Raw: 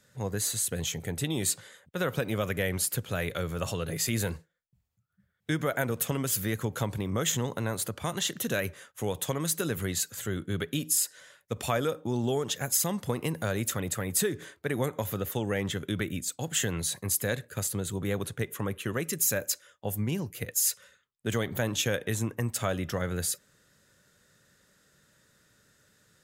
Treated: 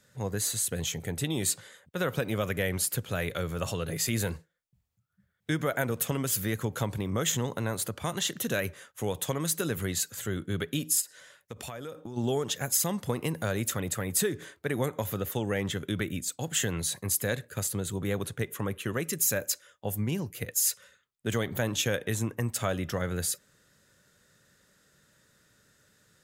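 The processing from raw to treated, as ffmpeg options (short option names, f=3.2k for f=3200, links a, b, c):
-filter_complex "[0:a]asplit=3[a][b][c];[a]afade=t=out:st=11:d=0.02[d];[b]acompressor=threshold=-36dB:ratio=6:attack=3.2:release=140:knee=1:detection=peak,afade=t=in:st=11:d=0.02,afade=t=out:st=12.16:d=0.02[e];[c]afade=t=in:st=12.16:d=0.02[f];[d][e][f]amix=inputs=3:normalize=0"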